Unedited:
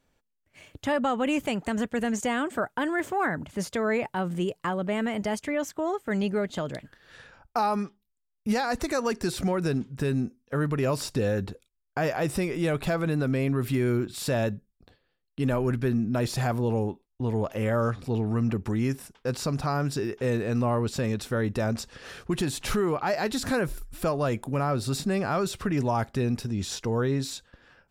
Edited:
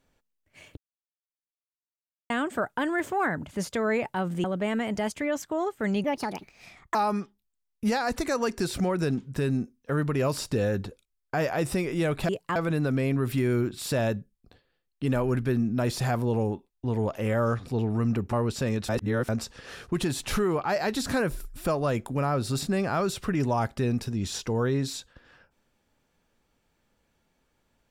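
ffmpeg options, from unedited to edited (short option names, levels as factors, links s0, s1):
-filter_complex "[0:a]asplit=11[s0][s1][s2][s3][s4][s5][s6][s7][s8][s9][s10];[s0]atrim=end=0.77,asetpts=PTS-STARTPTS,afade=t=out:st=0.766:d=0.004:c=hsin[s11];[s1]atrim=start=0.77:end=2.3,asetpts=PTS-STARTPTS,volume=0[s12];[s2]atrim=start=2.3:end=4.442,asetpts=PTS-STARTPTS,afade=t=in:d=0.004:c=hsin[s13];[s3]atrim=start=4.708:end=6.314[s14];[s4]atrim=start=6.31:end=7.58,asetpts=PTS-STARTPTS,asetrate=61740,aresample=44100[s15];[s5]atrim=start=7.576:end=12.922[s16];[s6]atrim=start=4.438:end=4.712[s17];[s7]atrim=start=12.918:end=18.692[s18];[s8]atrim=start=20.698:end=21.262[s19];[s9]atrim=start=21.258:end=21.662,asetpts=PTS-STARTPTS,areverse[s20];[s10]atrim=start=21.658[s21];[s11][s12][s13]concat=n=3:v=0:a=1[s22];[s22][s14]acrossfade=d=0.004:c1=hsin:c2=hsin[s23];[s23][s15]acrossfade=d=0.004:c1=hsin:c2=hsin[s24];[s24][s16]acrossfade=d=0.004:c1=hsin:c2=hsin[s25];[s25][s17]acrossfade=d=0.004:c1=hsin:c2=hsin[s26];[s26][s18]acrossfade=d=0.004:c1=hsin:c2=hsin[s27];[s27][s19]acrossfade=d=0.004:c1=hsin:c2=hsin[s28];[s28][s20]acrossfade=d=0.004:c1=hsin:c2=hsin[s29];[s29][s21]acrossfade=d=0.004:c1=hsin:c2=hsin"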